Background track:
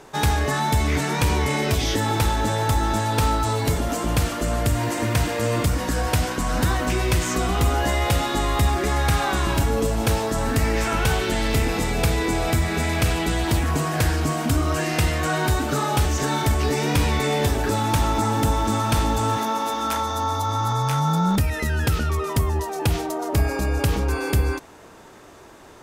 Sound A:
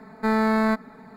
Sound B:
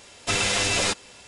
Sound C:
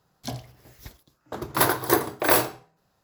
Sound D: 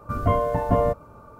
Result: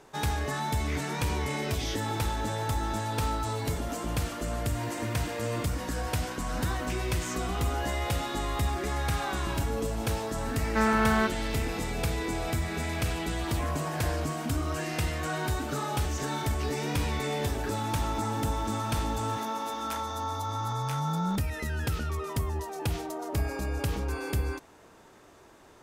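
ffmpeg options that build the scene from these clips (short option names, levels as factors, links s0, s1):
-filter_complex "[0:a]volume=0.355[s0];[1:a]equalizer=f=1500:w=1.2:g=6.5[s1];[4:a]highpass=370[s2];[s1]atrim=end=1.16,asetpts=PTS-STARTPTS,volume=0.501,afade=t=in:d=0.004:c=hsin,afade=t=out:st=1.156:d=0.004:c=hsin,adelay=10520[s3];[s2]atrim=end=1.39,asetpts=PTS-STARTPTS,volume=0.178,afade=t=in:d=0.004:c=hsin,afade=t=out:st=1.386:d=0.004:c=hsin,adelay=587412S[s4];[s0][s3][s4]amix=inputs=3:normalize=0"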